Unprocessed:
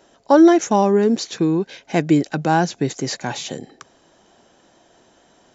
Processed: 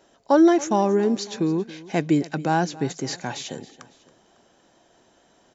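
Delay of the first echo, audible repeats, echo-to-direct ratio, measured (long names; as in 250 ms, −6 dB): 276 ms, 2, −18.0 dB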